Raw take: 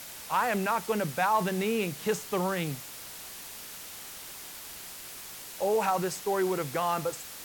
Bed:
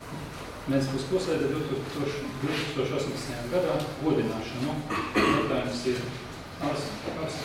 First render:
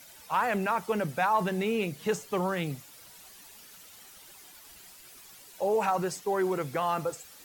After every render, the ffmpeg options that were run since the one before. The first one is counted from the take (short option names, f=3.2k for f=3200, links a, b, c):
-af "afftdn=nr=11:nf=-44"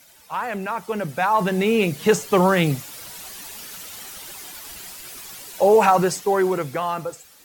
-af "dynaudnorm=f=240:g=13:m=15dB"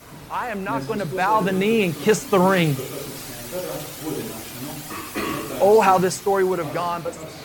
-filter_complex "[1:a]volume=-3.5dB[a];[0:a][a]amix=inputs=2:normalize=0"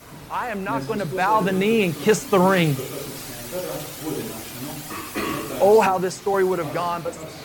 -filter_complex "[0:a]asettb=1/sr,asplit=3[a][b][c];[a]atrim=end=5.864[d];[b]atrim=start=5.86:end=6.34,asetpts=PTS-STARTPTS,afade=t=in:d=0.004:c=qsin,afade=t=out:st=0.476:d=0.004:c=qsin,acrossover=split=180|1100|7900[e][f][g][h];[e]acompressor=threshold=-39dB:ratio=3[i];[f]acompressor=threshold=-20dB:ratio=3[j];[g]acompressor=threshold=-32dB:ratio=3[k];[h]acompressor=threshold=-47dB:ratio=3[l];[i][j][k][l]amix=inputs=4:normalize=0[m];[c]atrim=start=6.336[n];[d][m]acrossfade=d=0.004:c1=hsin:c2=qsin[o];[o][n]acrossfade=d=0.004:c1=qsin:c2=hsin"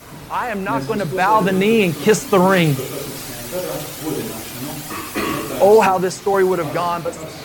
-af "volume=4.5dB,alimiter=limit=-3dB:level=0:latency=1"